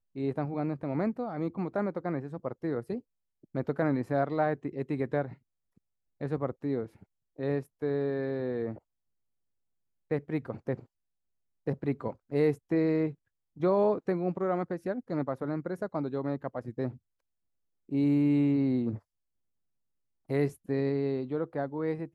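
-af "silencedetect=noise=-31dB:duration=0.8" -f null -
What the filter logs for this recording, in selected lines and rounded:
silence_start: 5.26
silence_end: 6.21 | silence_duration: 0.96
silence_start: 8.72
silence_end: 10.11 | silence_duration: 1.39
silence_start: 10.74
silence_end: 11.67 | silence_duration: 0.93
silence_start: 16.89
silence_end: 17.93 | silence_duration: 1.04
silence_start: 18.95
silence_end: 20.31 | silence_duration: 1.36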